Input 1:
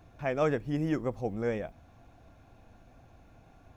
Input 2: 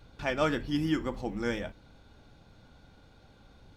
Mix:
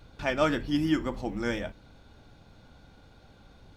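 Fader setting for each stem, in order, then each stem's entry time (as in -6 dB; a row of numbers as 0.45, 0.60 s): -12.0, +2.0 dB; 0.00, 0.00 s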